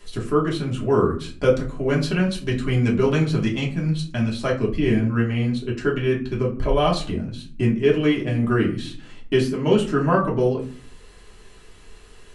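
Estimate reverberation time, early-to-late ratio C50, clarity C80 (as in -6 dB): 0.45 s, 10.5 dB, 15.0 dB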